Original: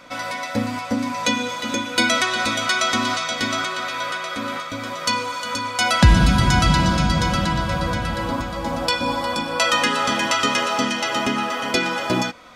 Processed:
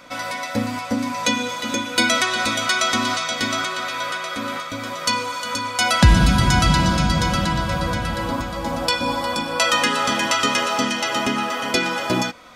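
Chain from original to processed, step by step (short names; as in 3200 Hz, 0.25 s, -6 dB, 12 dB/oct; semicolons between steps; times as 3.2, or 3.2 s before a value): high shelf 8300 Hz +5 dB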